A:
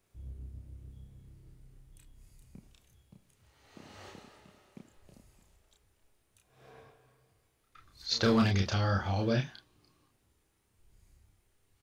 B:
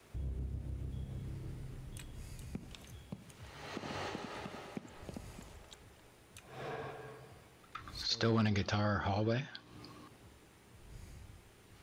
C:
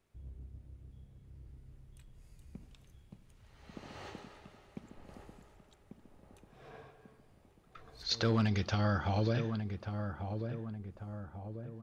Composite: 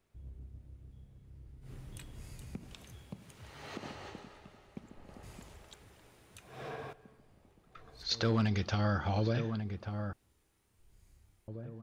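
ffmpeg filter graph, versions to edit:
-filter_complex "[1:a]asplit=2[a][b];[2:a]asplit=4[c][d][e][f];[c]atrim=end=1.71[g];[a]atrim=start=1.61:end=3.96[h];[d]atrim=start=3.86:end=5.232[i];[b]atrim=start=5.228:end=6.932[j];[e]atrim=start=6.928:end=10.132[k];[0:a]atrim=start=10.128:end=11.482[l];[f]atrim=start=11.478[m];[g][h]acrossfade=d=0.1:c1=tri:c2=tri[n];[n][i]acrossfade=d=0.1:c1=tri:c2=tri[o];[o][j]acrossfade=d=0.004:c1=hsin:c2=hsin[p];[p][k]acrossfade=d=0.004:c1=hsin:c2=hsin[q];[q][l]acrossfade=d=0.004:c1=hsin:c2=hsin[r];[r][m]acrossfade=d=0.004:c1=hsin:c2=hsin"

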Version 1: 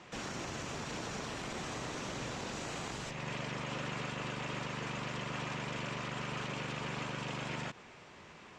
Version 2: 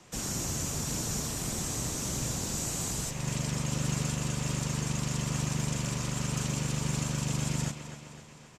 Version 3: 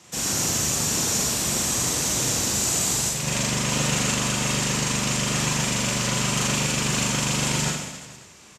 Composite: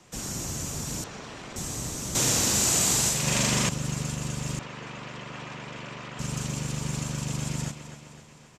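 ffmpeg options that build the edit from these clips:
-filter_complex "[0:a]asplit=2[a][b];[1:a]asplit=4[c][d][e][f];[c]atrim=end=1.042[g];[a]atrim=start=1.038:end=1.562[h];[d]atrim=start=1.558:end=2.152[i];[2:a]atrim=start=2.148:end=3.692[j];[e]atrim=start=3.688:end=4.592[k];[b]atrim=start=4.588:end=6.192[l];[f]atrim=start=6.188[m];[g][h]acrossfade=d=0.004:c1=hsin:c2=hsin[n];[n][i]acrossfade=d=0.004:c1=hsin:c2=hsin[o];[o][j]acrossfade=d=0.004:c1=hsin:c2=hsin[p];[p][k]acrossfade=d=0.004:c1=hsin:c2=hsin[q];[q][l]acrossfade=d=0.004:c1=hsin:c2=hsin[r];[r][m]acrossfade=d=0.004:c1=hsin:c2=hsin"

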